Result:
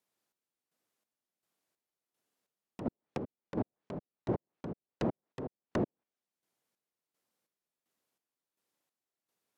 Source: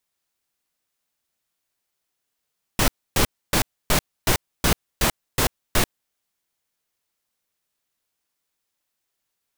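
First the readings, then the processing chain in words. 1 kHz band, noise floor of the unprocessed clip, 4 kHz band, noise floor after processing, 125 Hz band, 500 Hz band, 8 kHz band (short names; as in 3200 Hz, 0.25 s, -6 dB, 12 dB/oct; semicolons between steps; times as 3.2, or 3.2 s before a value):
-17.0 dB, -80 dBFS, -32.0 dB, under -85 dBFS, -13.0 dB, -9.0 dB, under -35 dB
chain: HPF 190 Hz 12 dB/oct; treble ducked by the level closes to 560 Hz, closed at -23.5 dBFS; tilt shelf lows +6 dB, about 900 Hz; limiter -21.5 dBFS, peak gain reduction 10.5 dB; chopper 1.4 Hz, depth 65%, duty 45%; gain -1 dB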